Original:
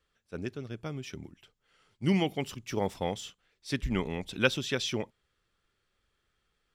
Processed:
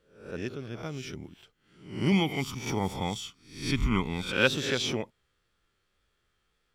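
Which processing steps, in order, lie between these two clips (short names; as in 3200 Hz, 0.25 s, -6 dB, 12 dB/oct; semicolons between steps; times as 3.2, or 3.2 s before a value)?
spectral swells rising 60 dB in 0.52 s; wow and flutter 29 cents; 2.12–4.32 comb 0.9 ms, depth 61%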